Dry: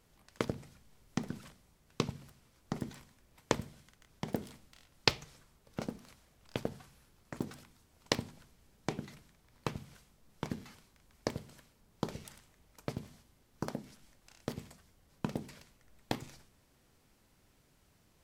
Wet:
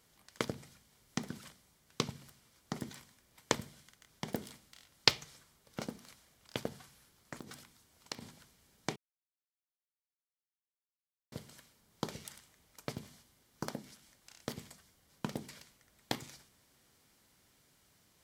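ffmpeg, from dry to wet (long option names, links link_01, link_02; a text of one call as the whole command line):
ffmpeg -i in.wav -filter_complex "[0:a]asettb=1/sr,asplit=3[link_01][link_02][link_03];[link_01]atrim=end=7.394[link_04];[link_02]atrim=start=7.39:end=8.22,asetpts=PTS-STARTPTS,afade=type=in:duration=0.004:curve=qsin,afade=type=out:start_time=0.826:duration=0.004:curve=qsin,acompressor=threshold=-40dB:ratio=6:attack=3.2:release=140:knee=1:detection=peak[link_05];[link_03]atrim=start=8.216[link_06];[link_04][link_05]acrossfade=duration=0.004:curve1=hsin:curve2=qsin[link_07];[link_07][link_06]acrossfade=duration=0.004:curve1=qsin:curve2=hsin,asplit=3[link_08][link_09][link_10];[link_08]atrim=end=8.96,asetpts=PTS-STARTPTS,afade=type=out:start_time=8.956:duration=0.004:curve=hsin[link_11];[link_09]atrim=start=8.96:end=11.32,asetpts=PTS-STARTPTS,volume=0[link_12];[link_10]atrim=start=11.32,asetpts=PTS-STARTPTS,afade=type=in:duration=0.004:curve=hsin[link_13];[link_11][link_12][link_13]concat=n=3:v=0:a=1,highpass=frequency=210:poles=1,equalizer=frequency=490:width=0.32:gain=-6,bandreject=frequency=2600:width=16,volume=4.5dB" out.wav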